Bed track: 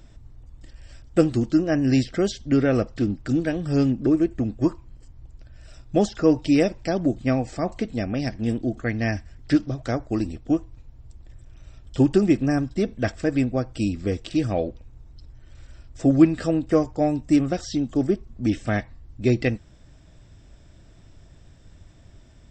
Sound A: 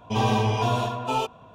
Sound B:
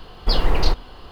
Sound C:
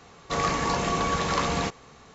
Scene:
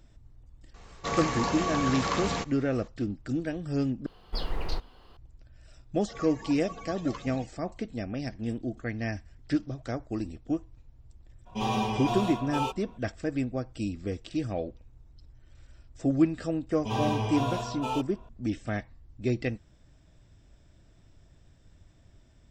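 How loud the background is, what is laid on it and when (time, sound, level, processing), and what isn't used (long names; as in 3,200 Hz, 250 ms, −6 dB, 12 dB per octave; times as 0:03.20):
bed track −8 dB
0:00.74: mix in C −4 dB
0:04.06: overwrite with B −13.5 dB
0:05.77: mix in C −11 dB + spectral dynamics exaggerated over time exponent 3
0:11.45: mix in A −8 dB, fades 0.02 s + comb filter 5.4 ms, depth 93%
0:16.75: mix in A −7 dB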